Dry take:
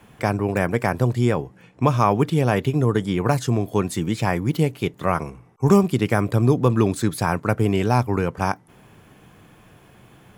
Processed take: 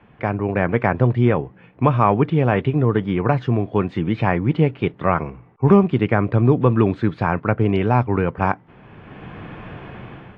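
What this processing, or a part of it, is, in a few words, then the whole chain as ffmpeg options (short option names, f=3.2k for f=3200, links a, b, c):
action camera in a waterproof case: -af "lowpass=f=2.8k:w=0.5412,lowpass=f=2.8k:w=1.3066,dynaudnorm=f=220:g=5:m=16dB,volume=-1dB" -ar 24000 -c:a aac -b:a 48k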